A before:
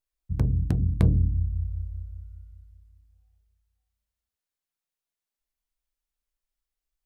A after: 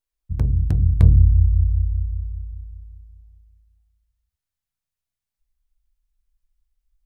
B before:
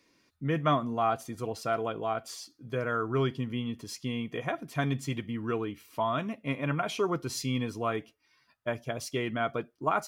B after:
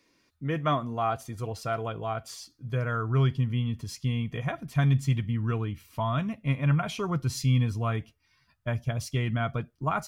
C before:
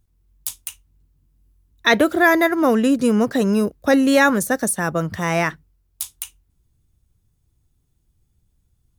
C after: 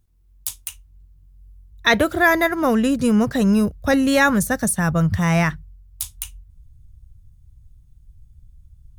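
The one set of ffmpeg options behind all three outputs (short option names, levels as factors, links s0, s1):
-af "asubboost=boost=10.5:cutoff=110"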